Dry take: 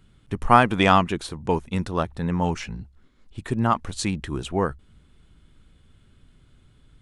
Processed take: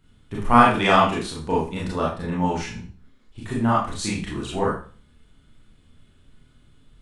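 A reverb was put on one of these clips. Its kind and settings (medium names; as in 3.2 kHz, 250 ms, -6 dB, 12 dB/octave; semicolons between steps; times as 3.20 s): Schroeder reverb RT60 0.39 s, combs from 26 ms, DRR -6 dB; trim -5.5 dB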